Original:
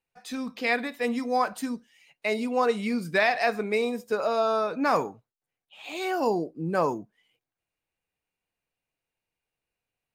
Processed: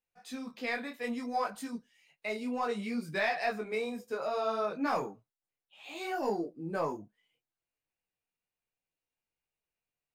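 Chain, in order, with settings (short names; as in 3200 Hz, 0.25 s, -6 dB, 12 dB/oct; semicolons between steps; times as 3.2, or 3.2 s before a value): in parallel at -6 dB: soft clip -19.5 dBFS, distortion -14 dB; on the sum: detuned doubles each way 22 cents; gain -7 dB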